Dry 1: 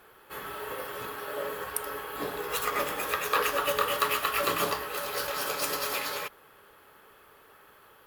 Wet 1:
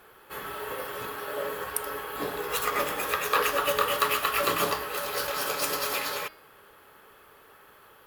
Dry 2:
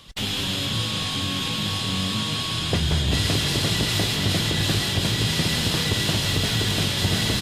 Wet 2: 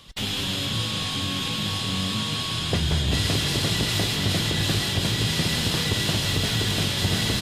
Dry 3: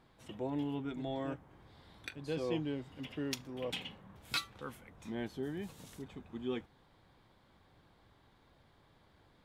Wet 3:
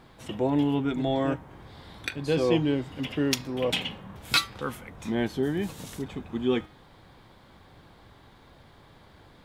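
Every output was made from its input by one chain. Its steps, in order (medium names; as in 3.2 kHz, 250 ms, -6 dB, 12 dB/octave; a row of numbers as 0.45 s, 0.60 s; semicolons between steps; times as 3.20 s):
de-hum 313 Hz, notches 17; peak normalisation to -9 dBFS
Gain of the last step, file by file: +2.0 dB, -1.0 dB, +12.5 dB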